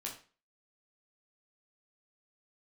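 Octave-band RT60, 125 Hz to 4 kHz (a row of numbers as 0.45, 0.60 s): 0.35, 0.40, 0.35, 0.35, 0.35, 0.35 s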